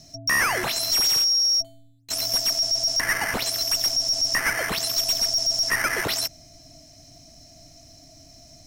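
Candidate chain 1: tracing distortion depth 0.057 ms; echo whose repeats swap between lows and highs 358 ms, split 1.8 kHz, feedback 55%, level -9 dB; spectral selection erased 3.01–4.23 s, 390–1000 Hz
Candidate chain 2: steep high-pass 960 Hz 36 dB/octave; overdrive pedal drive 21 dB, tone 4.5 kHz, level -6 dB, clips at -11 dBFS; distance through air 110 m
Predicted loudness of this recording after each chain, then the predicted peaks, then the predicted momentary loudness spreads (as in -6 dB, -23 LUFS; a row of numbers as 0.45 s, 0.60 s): -21.5 LUFS, -21.0 LUFS; -12.5 dBFS, -13.0 dBFS; 14 LU, 7 LU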